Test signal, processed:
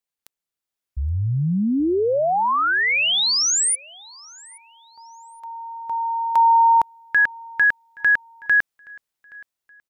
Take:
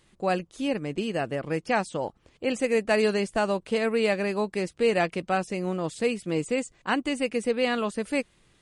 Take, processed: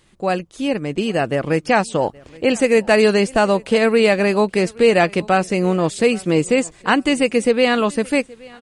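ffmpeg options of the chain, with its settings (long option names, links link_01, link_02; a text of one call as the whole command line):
ffmpeg -i in.wav -filter_complex "[0:a]dynaudnorm=framelen=470:gausssize=5:maxgain=6.5dB,asplit=2[link_01][link_02];[link_02]alimiter=limit=-13dB:level=0:latency=1:release=256,volume=-0.5dB[link_03];[link_01][link_03]amix=inputs=2:normalize=0,aecho=1:1:823|1646:0.0631|0.0189" out.wav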